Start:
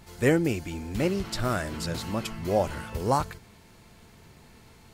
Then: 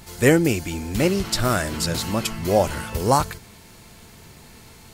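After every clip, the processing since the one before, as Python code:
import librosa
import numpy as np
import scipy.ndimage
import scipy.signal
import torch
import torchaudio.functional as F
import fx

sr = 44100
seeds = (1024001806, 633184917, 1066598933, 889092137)

y = fx.high_shelf(x, sr, hz=4300.0, db=7.5)
y = y * 10.0 ** (6.0 / 20.0)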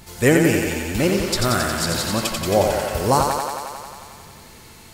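y = fx.echo_thinned(x, sr, ms=90, feedback_pct=78, hz=220.0, wet_db=-4.0)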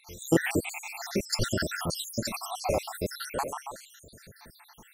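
y = fx.spec_dropout(x, sr, seeds[0], share_pct=74)
y = y * 10.0 ** (-3.5 / 20.0)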